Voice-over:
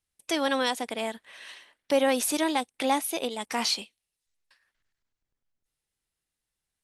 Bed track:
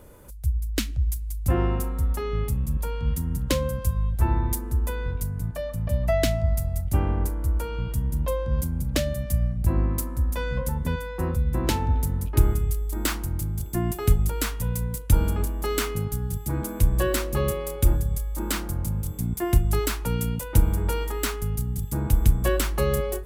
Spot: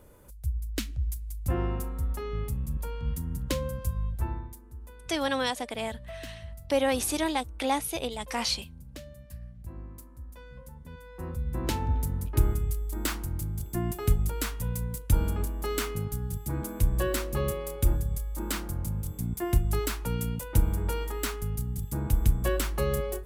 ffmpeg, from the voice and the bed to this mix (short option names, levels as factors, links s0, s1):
-filter_complex "[0:a]adelay=4800,volume=0.794[s0];[1:a]volume=2.82,afade=t=out:st=4.07:d=0.45:silence=0.211349,afade=t=in:st=10.89:d=0.94:silence=0.177828[s1];[s0][s1]amix=inputs=2:normalize=0"